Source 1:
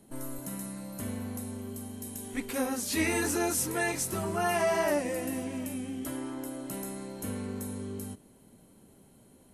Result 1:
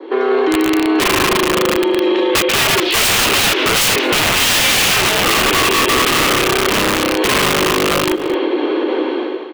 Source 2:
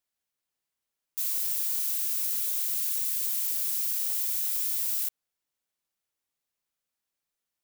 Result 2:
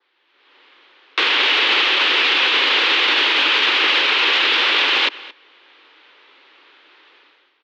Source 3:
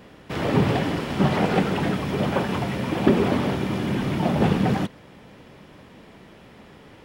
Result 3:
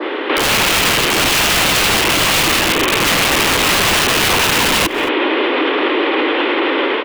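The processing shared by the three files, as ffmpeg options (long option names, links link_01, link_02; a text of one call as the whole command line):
ffmpeg -i in.wav -filter_complex "[0:a]dynaudnorm=framelen=130:gausssize=7:maxgain=16dB,volume=16dB,asoftclip=hard,volume=-16dB,highpass=frequency=180:width_type=q:width=0.5412,highpass=frequency=180:width_type=q:width=1.307,lowpass=frequency=3500:width_type=q:width=0.5176,lowpass=frequency=3500:width_type=q:width=0.7071,lowpass=frequency=3500:width_type=q:width=1.932,afreqshift=120,equalizer=frequency=670:width_type=o:width=0.34:gain=-11,aeval=exprs='(mod(10*val(0)+1,2)-1)/10':channel_layout=same,adynamicequalizer=threshold=0.00794:dfrequency=2800:dqfactor=1.9:tfrequency=2800:tqfactor=1.9:attack=5:release=100:ratio=0.375:range=2.5:mode=boostabove:tftype=bell,asplit=2[link_01][link_02];[link_02]adelay=221.6,volume=-28dB,highshelf=frequency=4000:gain=-4.99[link_03];[link_01][link_03]amix=inputs=2:normalize=0,acompressor=threshold=-33dB:ratio=6,alimiter=level_in=35dB:limit=-1dB:release=50:level=0:latency=1,volume=-6.5dB" out.wav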